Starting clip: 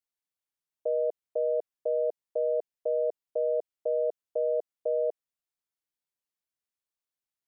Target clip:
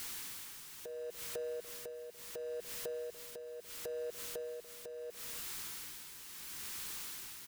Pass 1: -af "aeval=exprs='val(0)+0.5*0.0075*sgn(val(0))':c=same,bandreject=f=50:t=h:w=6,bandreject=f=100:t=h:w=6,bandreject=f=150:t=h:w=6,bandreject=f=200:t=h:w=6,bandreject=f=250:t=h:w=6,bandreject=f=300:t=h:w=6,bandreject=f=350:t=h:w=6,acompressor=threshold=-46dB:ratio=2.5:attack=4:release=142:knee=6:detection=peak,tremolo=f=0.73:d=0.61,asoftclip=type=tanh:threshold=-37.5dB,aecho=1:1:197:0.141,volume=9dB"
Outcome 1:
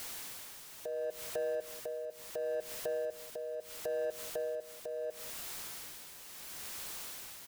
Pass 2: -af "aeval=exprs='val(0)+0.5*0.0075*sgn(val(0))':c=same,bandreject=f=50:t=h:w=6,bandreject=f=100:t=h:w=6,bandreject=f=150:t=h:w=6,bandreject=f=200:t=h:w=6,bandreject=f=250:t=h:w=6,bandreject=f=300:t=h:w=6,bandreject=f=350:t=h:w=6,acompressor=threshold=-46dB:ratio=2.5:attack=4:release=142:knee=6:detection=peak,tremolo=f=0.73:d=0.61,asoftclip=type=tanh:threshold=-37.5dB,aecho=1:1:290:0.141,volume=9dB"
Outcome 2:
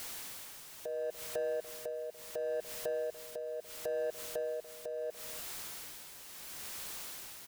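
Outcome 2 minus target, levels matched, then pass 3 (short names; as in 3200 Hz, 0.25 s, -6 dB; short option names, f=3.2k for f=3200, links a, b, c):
500 Hz band +3.0 dB
-af "aeval=exprs='val(0)+0.5*0.0075*sgn(val(0))':c=same,bandreject=f=50:t=h:w=6,bandreject=f=100:t=h:w=6,bandreject=f=150:t=h:w=6,bandreject=f=200:t=h:w=6,bandreject=f=250:t=h:w=6,bandreject=f=300:t=h:w=6,bandreject=f=350:t=h:w=6,acompressor=threshold=-46dB:ratio=2.5:attack=4:release=142:knee=6:detection=peak,equalizer=f=630:w=2.4:g=-13,tremolo=f=0.73:d=0.61,asoftclip=type=tanh:threshold=-37.5dB,aecho=1:1:290:0.141,volume=9dB"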